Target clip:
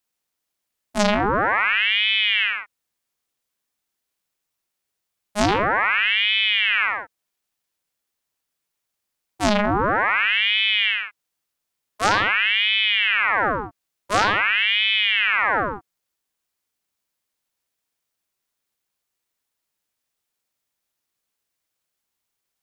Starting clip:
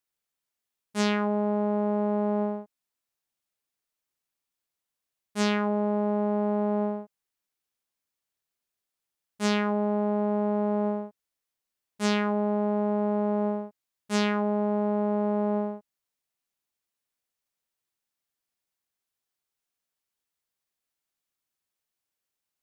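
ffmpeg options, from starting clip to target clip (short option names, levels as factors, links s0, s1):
-filter_complex "[0:a]asettb=1/sr,asplit=3[s0][s1][s2];[s0]atrim=end=12.684[s3];[s1]atrim=start=12.68:end=13.31,asetpts=PTS-STARTPTS,afade=t=in:d=0.004:c=qsin,afade=t=out:st=0.626:d=0.004:c=qsin,lowpass=f=3600:w=0.5412,lowpass=f=3600:w=1.3066[s4];[s2]atrim=start=13.306[s5];[s3][s4]acrossfade=d=0.004:c1=hsin:c2=qsin[s6];[s6][s5]acrossfade=d=0.004:c1=qsin:c2=hsin,aeval=exprs='val(0)*sin(2*PI*1600*n/s+1600*0.75/0.47*sin(2*PI*0.47*n/s))':c=same,volume=2.82"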